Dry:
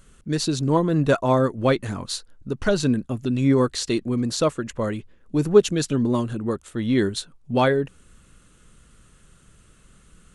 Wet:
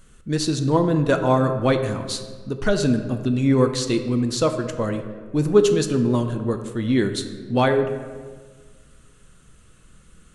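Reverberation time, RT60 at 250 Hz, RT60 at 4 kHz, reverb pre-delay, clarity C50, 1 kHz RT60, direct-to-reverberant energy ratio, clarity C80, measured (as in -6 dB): 1.5 s, 1.7 s, 0.90 s, 3 ms, 9.0 dB, 1.3 s, 6.5 dB, 10.5 dB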